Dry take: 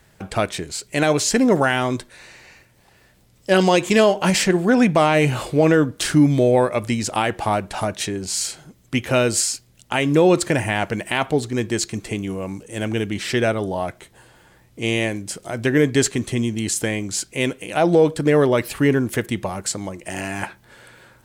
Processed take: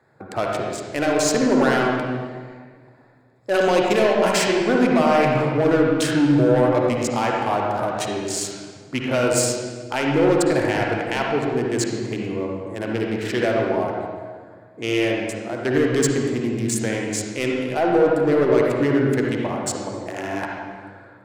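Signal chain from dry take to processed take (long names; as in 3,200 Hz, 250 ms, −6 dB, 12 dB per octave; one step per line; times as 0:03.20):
adaptive Wiener filter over 15 samples
high-pass filter 120 Hz 24 dB per octave
parametric band 180 Hz −10 dB 0.73 octaves
soft clipping −14 dBFS, distortion −12 dB
convolution reverb RT60 1.6 s, pre-delay 50 ms, DRR −1.5 dB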